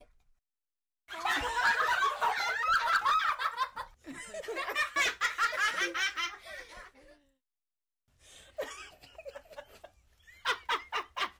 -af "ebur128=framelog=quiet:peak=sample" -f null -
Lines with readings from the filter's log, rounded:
Integrated loudness:
  I:         -30.5 LUFS
  Threshold: -42.4 LUFS
Loudness range:
  LRA:        18.8 LU
  Threshold: -52.6 LUFS
  LRA low:   -48.3 LUFS
  LRA high:  -29.5 LUFS
Sample peak:
  Peak:      -21.3 dBFS